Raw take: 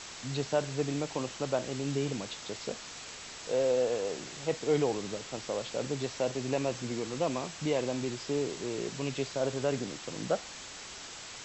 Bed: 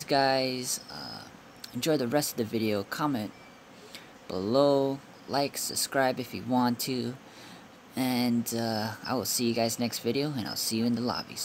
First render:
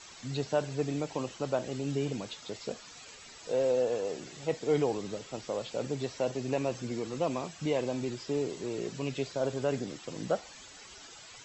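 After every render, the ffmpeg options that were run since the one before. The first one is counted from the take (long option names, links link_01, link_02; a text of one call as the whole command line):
ffmpeg -i in.wav -af "afftdn=noise_reduction=11:noise_floor=-45" out.wav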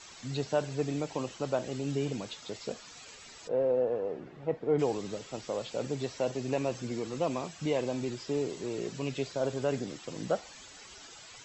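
ffmpeg -i in.wav -filter_complex "[0:a]asplit=3[link_01][link_02][link_03];[link_01]afade=type=out:start_time=3.47:duration=0.02[link_04];[link_02]lowpass=1400,afade=type=in:start_time=3.47:duration=0.02,afade=type=out:start_time=4.78:duration=0.02[link_05];[link_03]afade=type=in:start_time=4.78:duration=0.02[link_06];[link_04][link_05][link_06]amix=inputs=3:normalize=0" out.wav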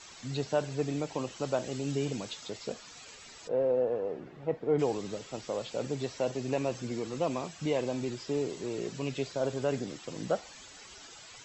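ffmpeg -i in.wav -filter_complex "[0:a]asettb=1/sr,asplit=3[link_01][link_02][link_03];[link_01]atrim=end=1.364[link_04];[link_02]atrim=start=1.36:end=2.48,asetpts=PTS-STARTPTS,afade=type=in:duration=0.004:curve=qsin,afade=type=out:start_time=1.116:duration=0.004:curve=qsin,highshelf=frequency=4800:gain=5[link_05];[link_03]atrim=start=2.476[link_06];[link_04][link_05]acrossfade=duration=0.004:curve1=hsin:curve2=qsin[link_07];[link_07][link_06]acrossfade=duration=0.004:curve1=qsin:curve2=hsin" out.wav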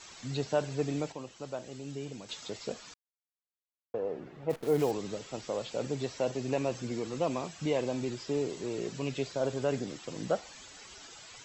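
ffmpeg -i in.wav -filter_complex "[0:a]asplit=3[link_01][link_02][link_03];[link_01]afade=type=out:start_time=4.49:duration=0.02[link_04];[link_02]acrusher=bits=8:dc=4:mix=0:aa=0.000001,afade=type=in:start_time=4.49:duration=0.02,afade=type=out:start_time=4.9:duration=0.02[link_05];[link_03]afade=type=in:start_time=4.9:duration=0.02[link_06];[link_04][link_05][link_06]amix=inputs=3:normalize=0,asplit=5[link_07][link_08][link_09][link_10][link_11];[link_07]atrim=end=1.122[link_12];[link_08]atrim=start=1.118:end=2.292,asetpts=PTS-STARTPTS,volume=-8dB[link_13];[link_09]atrim=start=2.288:end=2.94,asetpts=PTS-STARTPTS,afade=type=out:start_time=0.648:duration=0.004:curve=hsin[link_14];[link_10]atrim=start=2.94:end=3.94,asetpts=PTS-STARTPTS,volume=0[link_15];[link_11]atrim=start=3.94,asetpts=PTS-STARTPTS,afade=type=in:duration=0.004:curve=hsin[link_16];[link_12][link_13]acrossfade=duration=0.004:curve1=hsin:curve2=hsin[link_17];[link_14][link_15][link_16]concat=n=3:v=0:a=1[link_18];[link_17][link_18]acrossfade=duration=0.004:curve1=hsin:curve2=hsin" out.wav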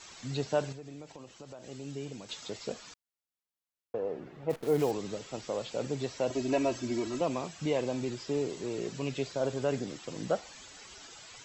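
ffmpeg -i in.wav -filter_complex "[0:a]asettb=1/sr,asplit=3[link_01][link_02][link_03];[link_01]atrim=end=0.724[link_04];[link_02]atrim=start=0.72:end=1.64,asetpts=PTS-STARTPTS,afade=type=in:duration=0.004:curve=qsin,afade=type=out:start_time=0.916:duration=0.004:curve=qsin,acompressor=threshold=-43dB:ratio=5:attack=3.2:release=140:knee=1:detection=peak[link_05];[link_03]atrim=start=1.636[link_06];[link_04][link_05]acrossfade=duration=0.004:curve1=hsin:curve2=qsin[link_07];[link_07][link_06]acrossfade=duration=0.004:curve1=qsin:curve2=hsin,asettb=1/sr,asplit=3[link_08][link_09][link_10];[link_08]atrim=end=6.304[link_11];[link_09]atrim=start=6.3:end=7.21,asetpts=PTS-STARTPTS,afade=type=in:duration=0.004:curve=qsin,afade=type=out:start_time=0.906:duration=0.004:curve=qsin,aecho=1:1:3.1:0.95,atrim=end_sample=40131[link_12];[link_10]atrim=start=7.206[link_13];[link_11][link_12]acrossfade=duration=0.004:curve1=hsin:curve2=qsin[link_14];[link_14][link_13]acrossfade=duration=0.004:curve1=qsin:curve2=hsin" out.wav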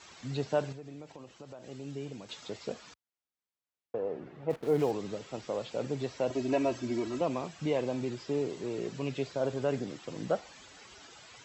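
ffmpeg -i in.wav -af "highpass=51,highshelf=frequency=5400:gain=-9.5" out.wav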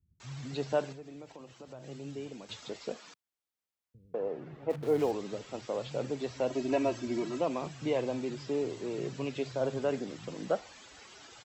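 ffmpeg -i in.wav -filter_complex "[0:a]acrossover=split=150[link_01][link_02];[link_02]adelay=200[link_03];[link_01][link_03]amix=inputs=2:normalize=0" out.wav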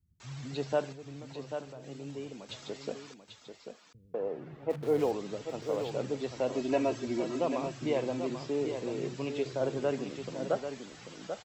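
ffmpeg -i in.wav -af "aecho=1:1:790:0.398" out.wav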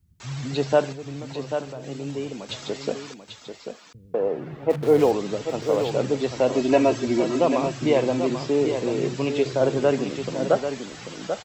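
ffmpeg -i in.wav -af "volume=10.5dB" out.wav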